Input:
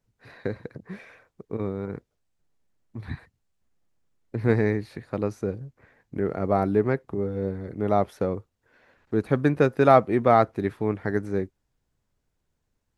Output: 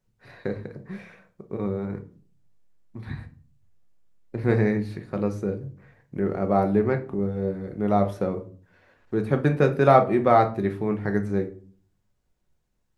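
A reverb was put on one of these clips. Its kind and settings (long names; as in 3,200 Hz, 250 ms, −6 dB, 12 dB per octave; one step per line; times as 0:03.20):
rectangular room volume 300 cubic metres, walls furnished, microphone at 1 metre
level −1 dB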